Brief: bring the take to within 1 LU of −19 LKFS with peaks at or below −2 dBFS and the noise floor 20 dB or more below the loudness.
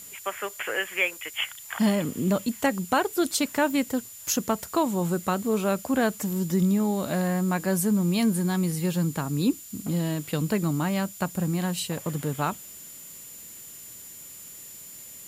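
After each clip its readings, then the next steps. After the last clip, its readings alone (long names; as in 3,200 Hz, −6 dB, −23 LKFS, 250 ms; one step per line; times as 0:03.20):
interfering tone 7,100 Hz; level of the tone −45 dBFS; background noise floor −44 dBFS; target noise floor −47 dBFS; integrated loudness −26.5 LKFS; sample peak −11.5 dBFS; target loudness −19.0 LKFS
→ notch filter 7,100 Hz, Q 30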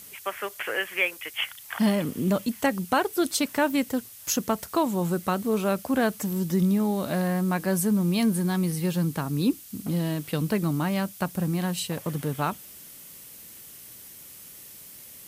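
interfering tone none found; background noise floor −46 dBFS; target noise floor −47 dBFS
→ broadband denoise 6 dB, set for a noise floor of −46 dBFS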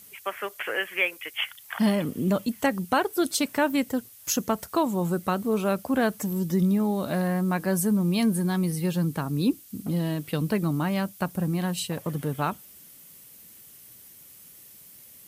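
background noise floor −50 dBFS; integrated loudness −26.5 LKFS; sample peak −11.5 dBFS; target loudness −19.0 LKFS
→ level +7.5 dB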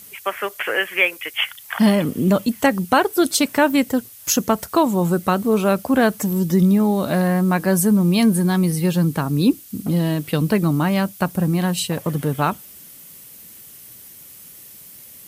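integrated loudness −19.0 LKFS; sample peak −4.0 dBFS; background noise floor −42 dBFS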